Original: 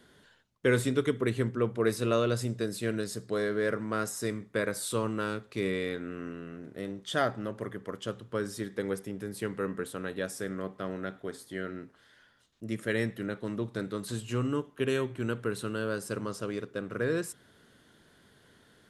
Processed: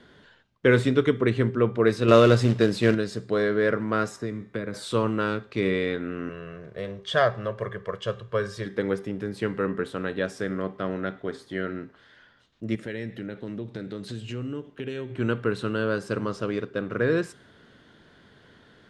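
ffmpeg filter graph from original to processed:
ffmpeg -i in.wav -filter_complex "[0:a]asettb=1/sr,asplit=3[link_01][link_02][link_03];[link_01]atrim=end=2.084[link_04];[link_02]atrim=start=2.08:end=2.95,asetpts=PTS-STARTPTS,afade=type=in:duration=0.004:curve=qsin,afade=type=out:start_time=0.866:duration=0.004:curve=qsin,acontrast=20,acrusher=bits=4:mode=log:mix=0:aa=0.000001[link_05];[link_03]atrim=start=2.946[link_06];[link_04][link_05]acrossfade=duration=0.004:curve1=hsin:curve2=qsin[link_07];[link_07][link_06]acrossfade=duration=0.004:curve1=qsin:curve2=hsin,asettb=1/sr,asplit=3[link_08][link_09][link_10];[link_08]atrim=end=4.164[link_11];[link_09]atrim=start=4.16:end=4.74,asetpts=PTS-STARTPTS,afade=type=in:duration=0.004:curve=qsin,afade=type=out:start_time=0.576:duration=0.004:curve=qsin,bandreject=frequency=257.4:width_type=h:width=4,bandreject=frequency=514.8:width_type=h:width=4,bandreject=frequency=772.2:width_type=h:width=4,bandreject=frequency=1029.6:width_type=h:width=4,bandreject=frequency=1287:width_type=h:width=4,bandreject=frequency=1544.4:width_type=h:width=4,bandreject=frequency=1801.8:width_type=h:width=4,bandreject=frequency=2059.2:width_type=h:width=4,bandreject=frequency=2316.6:width_type=h:width=4,bandreject=frequency=2574:width_type=h:width=4,bandreject=frequency=2831.4:width_type=h:width=4,bandreject=frequency=3088.8:width_type=h:width=4,bandreject=frequency=3346.2:width_type=h:width=4,bandreject=frequency=3603.6:width_type=h:width=4,bandreject=frequency=3861:width_type=h:width=4,bandreject=frequency=4118.4:width_type=h:width=4,acrossover=split=340|2100[link_12][link_13][link_14];[link_12]acompressor=threshold=-36dB:ratio=4[link_15];[link_13]acompressor=threshold=-44dB:ratio=4[link_16];[link_14]acompressor=threshold=-54dB:ratio=4[link_17];[link_15][link_16][link_17]amix=inputs=3:normalize=0[link_18];[link_10]atrim=start=4.736[link_19];[link_11][link_18]acrossfade=duration=0.004:curve1=hsin:curve2=qsin[link_20];[link_20][link_19]acrossfade=duration=0.004:curve1=qsin:curve2=hsin,asettb=1/sr,asplit=3[link_21][link_22][link_23];[link_21]atrim=end=6.294[link_24];[link_22]atrim=start=6.29:end=8.66,asetpts=PTS-STARTPTS,afade=type=in:duration=0.004:curve=qsin,afade=type=out:start_time=2.366:duration=0.004:curve=qsin,equalizer=frequency=270:width_type=o:width=0.57:gain=-11.5,aecho=1:1:1.8:0.48,atrim=end_sample=104517[link_25];[link_23]atrim=start=8.656[link_26];[link_24][link_25]acrossfade=duration=0.004:curve1=hsin:curve2=qsin[link_27];[link_27][link_26]acrossfade=duration=0.004:curve1=qsin:curve2=hsin,asettb=1/sr,asplit=3[link_28][link_29][link_30];[link_28]atrim=end=12.754[link_31];[link_29]atrim=start=12.75:end=15.16,asetpts=PTS-STARTPTS,afade=type=in:duration=0.004:curve=qsin,afade=type=out:start_time=2.406:duration=0.004:curve=qsin,equalizer=frequency=1100:width=1.7:gain=-8.5,acompressor=threshold=-38dB:ratio=3:attack=3.2:release=140:knee=1:detection=peak[link_32];[link_30]atrim=start=15.156[link_33];[link_31][link_32]acrossfade=duration=0.004:curve1=hsin:curve2=qsin[link_34];[link_34][link_33]acrossfade=duration=0.004:curve1=qsin:curve2=hsin,lowpass=4200,bandreject=frequency=396.1:width_type=h:width=4,bandreject=frequency=792.2:width_type=h:width=4,bandreject=frequency=1188.3:width_type=h:width=4,bandreject=frequency=1584.4:width_type=h:width=4,bandreject=frequency=1980.5:width_type=h:width=4,bandreject=frequency=2376.6:width_type=h:width=4,bandreject=frequency=2772.7:width_type=h:width=4,bandreject=frequency=3168.8:width_type=h:width=4,bandreject=frequency=3564.9:width_type=h:width=4,bandreject=frequency=3961:width_type=h:width=4,bandreject=frequency=4357.1:width_type=h:width=4,bandreject=frequency=4753.2:width_type=h:width=4,bandreject=frequency=5149.3:width_type=h:width=4,bandreject=frequency=5545.4:width_type=h:width=4,bandreject=frequency=5941.5:width_type=h:width=4,bandreject=frequency=6337.6:width_type=h:width=4,bandreject=frequency=6733.7:width_type=h:width=4,bandreject=frequency=7129.8:width_type=h:width=4,bandreject=frequency=7525.9:width_type=h:width=4,bandreject=frequency=7922:width_type=h:width=4,bandreject=frequency=8318.1:width_type=h:width=4,bandreject=frequency=8714.2:width_type=h:width=4,bandreject=frequency=9110.3:width_type=h:width=4,bandreject=frequency=9506.4:width_type=h:width=4,bandreject=frequency=9902.5:width_type=h:width=4,bandreject=frequency=10298.6:width_type=h:width=4,bandreject=frequency=10694.7:width_type=h:width=4,bandreject=frequency=11090.8:width_type=h:width=4,bandreject=frequency=11486.9:width_type=h:width=4,bandreject=frequency=11883:width_type=h:width=4,bandreject=frequency=12279.1:width_type=h:width=4,bandreject=frequency=12675.2:width_type=h:width=4,volume=6.5dB" out.wav

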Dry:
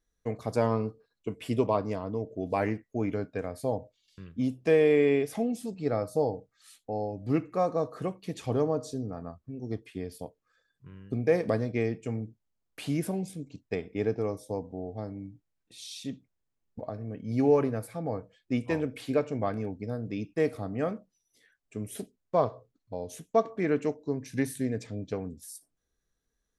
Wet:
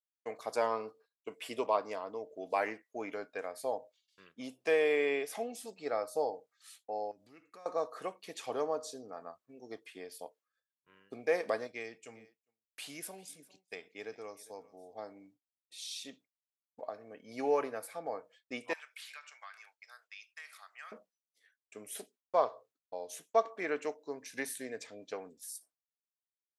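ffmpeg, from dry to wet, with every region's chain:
ffmpeg -i in.wav -filter_complex "[0:a]asettb=1/sr,asplit=3[link_01][link_02][link_03];[link_01]atrim=end=7.114[link_04];[link_02]atrim=start=7.11:end=7.66,asetpts=PTS-STARTPTS,afade=type=in:duration=0.004:curve=qsin,afade=type=out:start_time=0.546:duration=0.004:curve=qsin,acompressor=threshold=-39dB:ratio=4:attack=3.2:release=140:knee=1:detection=peak,equalizer=frequency=710:width=0.6:gain=-11[link_05];[link_03]atrim=start=7.656[link_06];[link_04][link_05]acrossfade=duration=0.004:curve1=hsin:curve2=qsin[link_07];[link_07][link_06]acrossfade=duration=0.004:curve1=qsin:curve2=hsin,asettb=1/sr,asplit=3[link_08][link_09][link_10];[link_08]atrim=end=11.674[link_11];[link_09]atrim=start=11.67:end=14.94,asetpts=PTS-STARTPTS,afade=type=in:duration=0.004:curve=qsin,afade=type=out:start_time=3.266:duration=0.004:curve=qsin,equalizer=frequency=610:width=0.31:gain=-8.5,aecho=1:1:401:0.1,atrim=end_sample=144207[link_12];[link_10]atrim=start=14.936[link_13];[link_11][link_12]acrossfade=duration=0.004:curve1=hsin:curve2=qsin[link_14];[link_14][link_13]acrossfade=duration=0.004:curve1=qsin:curve2=hsin,asettb=1/sr,asplit=3[link_15][link_16][link_17];[link_15]atrim=end=18.734[link_18];[link_16]atrim=start=18.73:end=20.92,asetpts=PTS-STARTPTS,afade=type=in:duration=0.004:curve=qsin,afade=type=out:start_time=2.186:duration=0.004:curve=qsin,highpass=frequency=1300:width=0.5412,highpass=frequency=1300:width=1.3066,acompressor=threshold=-43dB:ratio=10:attack=3.2:release=140:knee=1:detection=peak[link_19];[link_17]atrim=start=20.916[link_20];[link_18][link_19]acrossfade=duration=0.004:curve1=hsin:curve2=qsin[link_21];[link_21][link_20]acrossfade=duration=0.004:curve1=qsin:curve2=hsin,highpass=640,agate=range=-33dB:threshold=-59dB:ratio=3:detection=peak" out.wav

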